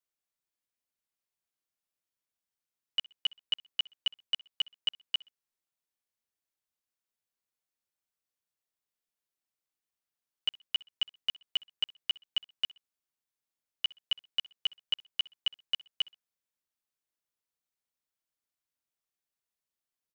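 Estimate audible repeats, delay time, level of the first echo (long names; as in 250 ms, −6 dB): 2, 63 ms, −23.0 dB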